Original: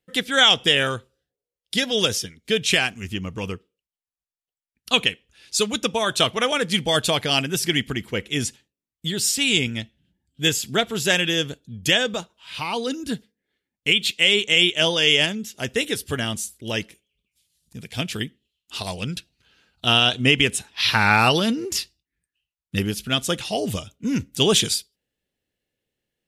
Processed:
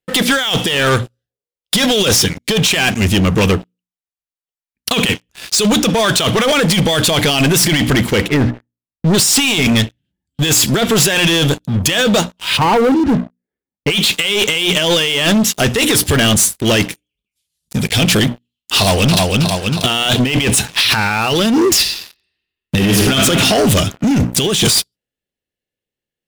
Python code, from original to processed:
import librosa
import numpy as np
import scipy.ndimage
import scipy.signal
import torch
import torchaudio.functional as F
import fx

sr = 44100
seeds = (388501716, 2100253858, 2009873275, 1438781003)

y = fx.lowpass(x, sr, hz=fx.line((8.27, 2000.0), (9.13, 1100.0)), slope=24, at=(8.27, 9.13), fade=0.02)
y = fx.lowpass(y, sr, hz=1100.0, slope=12, at=(12.56, 13.89), fade=0.02)
y = fx.echo_throw(y, sr, start_s=18.76, length_s=0.41, ms=320, feedback_pct=50, wet_db=-4.5)
y = fx.reverb_throw(y, sr, start_s=21.79, length_s=1.35, rt60_s=1.8, drr_db=4.0)
y = fx.hum_notches(y, sr, base_hz=60, count=5)
y = fx.over_compress(y, sr, threshold_db=-27.0, ratio=-1.0)
y = fx.leveller(y, sr, passes=5)